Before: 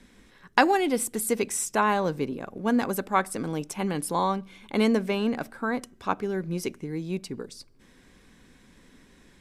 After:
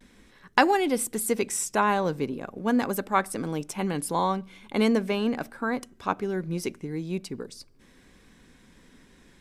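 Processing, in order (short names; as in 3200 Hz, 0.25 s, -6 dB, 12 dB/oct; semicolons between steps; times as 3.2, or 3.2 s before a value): vibrato 0.42 Hz 27 cents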